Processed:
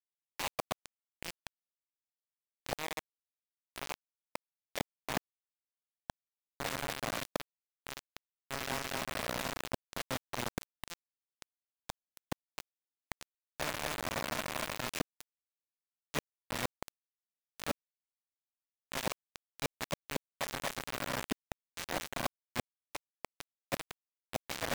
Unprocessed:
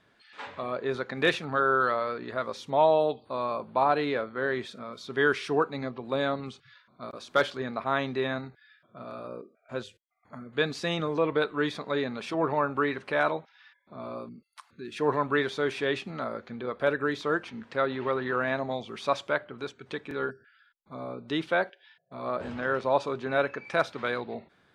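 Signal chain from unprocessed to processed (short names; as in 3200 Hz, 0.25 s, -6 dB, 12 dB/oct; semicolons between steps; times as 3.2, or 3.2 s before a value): G.711 law mismatch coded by A; echo with dull and thin repeats by turns 0.119 s, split 1300 Hz, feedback 88%, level -9 dB; flipped gate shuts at -24 dBFS, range -32 dB; in parallel at 0 dB: level quantiser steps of 16 dB; on the sum: fixed phaser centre 1400 Hz, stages 6; dynamic EQ 250 Hz, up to +4 dB, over -57 dBFS, Q 1.8; reverse; compressor 12:1, threshold -51 dBFS, peak gain reduction 18.5 dB; reverse; requantised 8-bit, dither none; gain +17.5 dB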